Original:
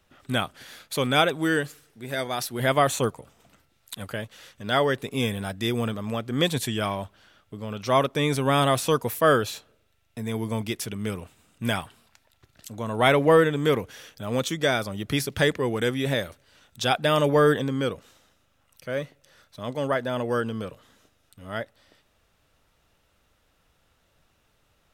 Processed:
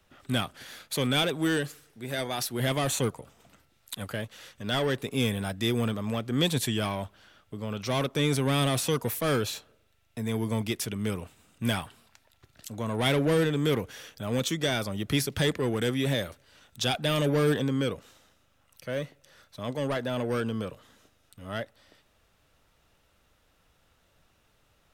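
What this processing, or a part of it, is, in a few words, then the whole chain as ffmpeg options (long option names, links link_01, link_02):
one-band saturation: -filter_complex "[0:a]acrossover=split=340|2600[link_01][link_02][link_03];[link_02]asoftclip=type=tanh:threshold=-29dB[link_04];[link_01][link_04][link_03]amix=inputs=3:normalize=0"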